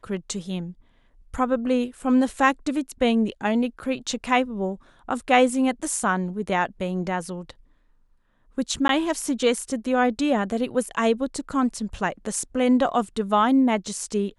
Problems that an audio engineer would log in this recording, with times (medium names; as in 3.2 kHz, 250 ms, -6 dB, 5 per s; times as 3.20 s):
8.88–8.89 s: dropout